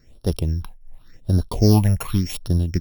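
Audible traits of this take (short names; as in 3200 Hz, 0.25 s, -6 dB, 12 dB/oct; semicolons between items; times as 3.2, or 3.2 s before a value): a buzz of ramps at a fixed pitch in blocks of 8 samples; phasing stages 6, 0.9 Hz, lowest notch 300–2200 Hz; noise-modulated level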